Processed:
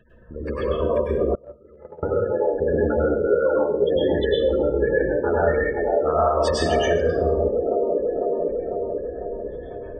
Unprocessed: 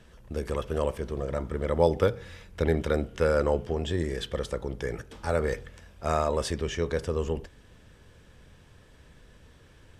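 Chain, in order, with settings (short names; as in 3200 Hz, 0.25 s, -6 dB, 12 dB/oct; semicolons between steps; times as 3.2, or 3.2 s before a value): low shelf 260 Hz -6 dB; band-limited delay 0.499 s, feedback 61%, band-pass 450 Hz, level -5 dB; compressor 4:1, threshold -36 dBFS, peak gain reduction 15.5 dB; spectral gate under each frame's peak -15 dB strong; AGC gain up to 9 dB; dynamic EQ 1800 Hz, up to +6 dB, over -49 dBFS, Q 1.5; plate-style reverb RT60 0.6 s, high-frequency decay 0.85×, pre-delay 90 ms, DRR -6 dB; 1.35–2.03 gate -16 dBFS, range -28 dB; 3.27–3.96 HPF 160 Hz 12 dB/oct; gain +1.5 dB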